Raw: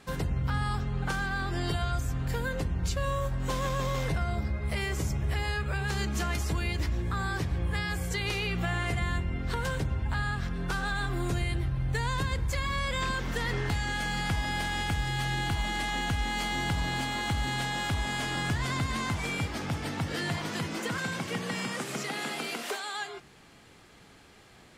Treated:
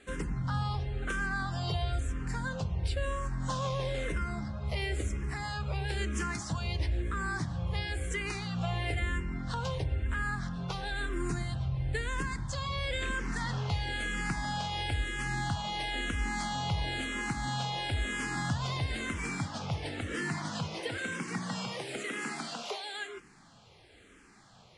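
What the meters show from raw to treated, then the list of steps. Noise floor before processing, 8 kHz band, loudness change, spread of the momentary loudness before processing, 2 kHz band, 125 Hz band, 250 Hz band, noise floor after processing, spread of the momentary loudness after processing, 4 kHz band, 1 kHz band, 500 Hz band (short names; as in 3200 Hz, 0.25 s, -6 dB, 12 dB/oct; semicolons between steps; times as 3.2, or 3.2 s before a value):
-55 dBFS, -3.5 dB, -3.0 dB, 3 LU, -3.0 dB, -3.0 dB, -3.0 dB, -58 dBFS, 4 LU, -3.0 dB, -3.5 dB, -3.0 dB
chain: downsampling 22050 Hz; endless phaser -1 Hz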